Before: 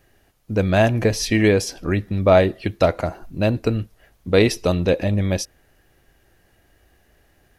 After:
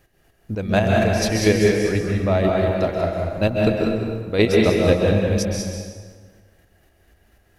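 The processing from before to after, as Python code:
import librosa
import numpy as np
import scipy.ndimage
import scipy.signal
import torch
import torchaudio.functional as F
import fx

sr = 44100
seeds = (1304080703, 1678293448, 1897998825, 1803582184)

y = fx.chopper(x, sr, hz=4.1, depth_pct=60, duty_pct=25)
y = y + 10.0 ** (-6.5 / 20.0) * np.pad(y, (int(195 * sr / 1000.0), 0))[:len(y)]
y = fx.rev_plate(y, sr, seeds[0], rt60_s=1.6, hf_ratio=0.7, predelay_ms=120, drr_db=-0.5)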